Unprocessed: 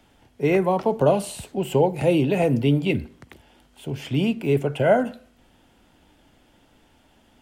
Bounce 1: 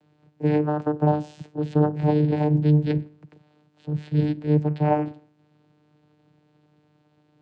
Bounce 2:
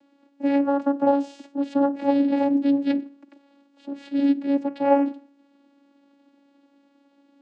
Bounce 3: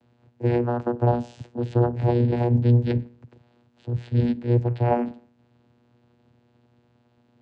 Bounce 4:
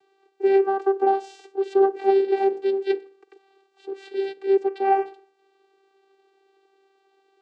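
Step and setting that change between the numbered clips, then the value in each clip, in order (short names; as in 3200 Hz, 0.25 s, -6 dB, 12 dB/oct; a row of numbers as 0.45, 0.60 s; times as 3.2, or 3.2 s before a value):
vocoder, frequency: 150, 280, 120, 390 Hz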